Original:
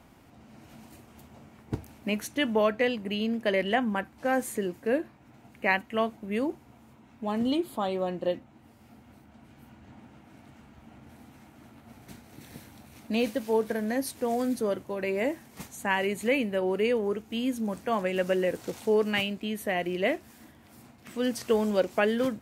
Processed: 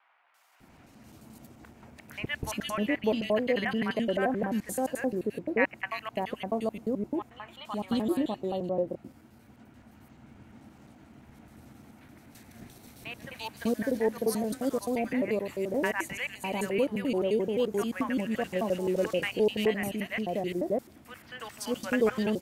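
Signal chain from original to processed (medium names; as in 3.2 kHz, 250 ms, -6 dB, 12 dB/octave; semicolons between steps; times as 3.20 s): slices played last to first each 87 ms, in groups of 2; three bands offset in time mids, highs, lows 340/600 ms, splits 890/2800 Hz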